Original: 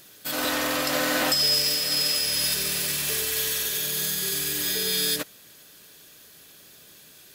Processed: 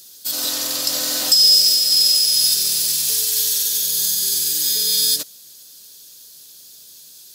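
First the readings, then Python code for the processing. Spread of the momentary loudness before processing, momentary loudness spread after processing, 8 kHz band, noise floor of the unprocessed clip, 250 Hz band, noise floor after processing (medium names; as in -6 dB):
5 LU, 9 LU, +9.0 dB, -51 dBFS, -6.0 dB, -44 dBFS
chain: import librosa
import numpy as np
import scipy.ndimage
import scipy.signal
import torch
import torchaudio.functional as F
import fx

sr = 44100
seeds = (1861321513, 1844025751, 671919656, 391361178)

y = fx.high_shelf_res(x, sr, hz=3200.0, db=13.5, q=1.5)
y = y * 10.0 ** (-6.0 / 20.0)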